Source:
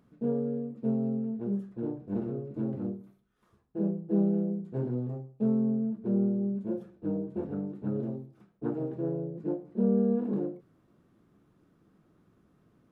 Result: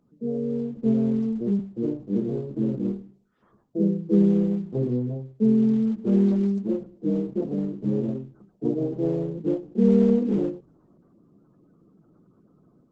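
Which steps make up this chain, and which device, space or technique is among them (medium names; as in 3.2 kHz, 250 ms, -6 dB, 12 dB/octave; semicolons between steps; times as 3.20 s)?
1.59–2.08 s: high-pass 88 Hz 24 dB/octave; noise-suppressed video call (high-pass 120 Hz 24 dB/octave; spectral gate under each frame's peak -20 dB strong; level rider gain up to 7.5 dB; Opus 12 kbps 48 kHz)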